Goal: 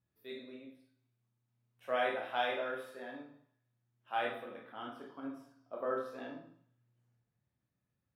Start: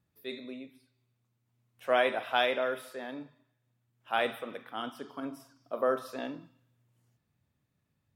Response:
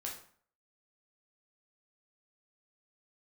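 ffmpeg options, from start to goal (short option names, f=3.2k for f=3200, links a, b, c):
-filter_complex "[0:a]asetnsamples=n=441:p=0,asendcmd='4.24 highshelf g -11.5',highshelf=f=4.3k:g=-5.5[a];[1:a]atrim=start_sample=2205[b];[a][b]afir=irnorm=-1:irlink=0,volume=-5dB"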